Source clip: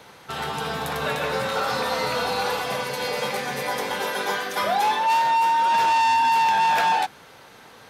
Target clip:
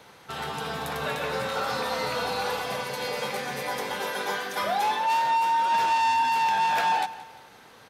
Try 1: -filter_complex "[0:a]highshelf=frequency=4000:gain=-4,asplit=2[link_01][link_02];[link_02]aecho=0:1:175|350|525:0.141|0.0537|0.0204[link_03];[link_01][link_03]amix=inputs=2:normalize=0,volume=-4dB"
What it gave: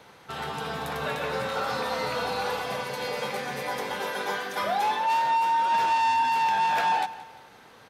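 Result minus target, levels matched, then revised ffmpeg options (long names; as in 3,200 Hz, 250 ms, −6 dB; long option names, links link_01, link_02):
8,000 Hz band −2.5 dB
-filter_complex "[0:a]asplit=2[link_01][link_02];[link_02]aecho=0:1:175|350|525:0.141|0.0537|0.0204[link_03];[link_01][link_03]amix=inputs=2:normalize=0,volume=-4dB"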